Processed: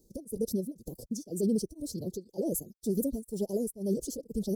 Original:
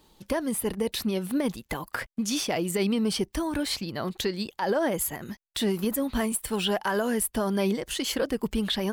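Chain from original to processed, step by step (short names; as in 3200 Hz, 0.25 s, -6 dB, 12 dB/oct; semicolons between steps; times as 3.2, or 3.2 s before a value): elliptic band-stop 510–5700 Hz, stop band 60 dB; time stretch by phase-locked vocoder 0.51×; beating tremolo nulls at 2 Hz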